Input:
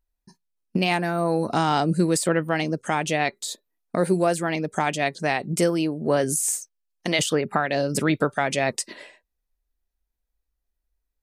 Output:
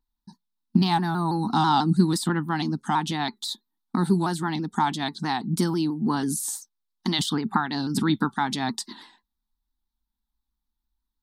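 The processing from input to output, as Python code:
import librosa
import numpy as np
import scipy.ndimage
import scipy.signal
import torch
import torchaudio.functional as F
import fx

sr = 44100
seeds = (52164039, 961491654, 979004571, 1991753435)

y = fx.curve_eq(x, sr, hz=(140.0, 220.0, 360.0, 580.0, 850.0, 1700.0, 2500.0, 3700.0, 6800.0, 14000.0), db=(0, 12, -1, -25, 9, -2, -12, 9, -5, 1))
y = fx.vibrato_shape(y, sr, shape='saw_down', rate_hz=6.1, depth_cents=100.0)
y = y * 10.0 ** (-3.0 / 20.0)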